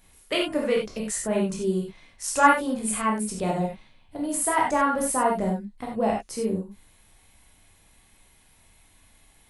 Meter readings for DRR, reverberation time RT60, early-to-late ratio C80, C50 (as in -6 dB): -2.0 dB, no single decay rate, 9.0 dB, 4.0 dB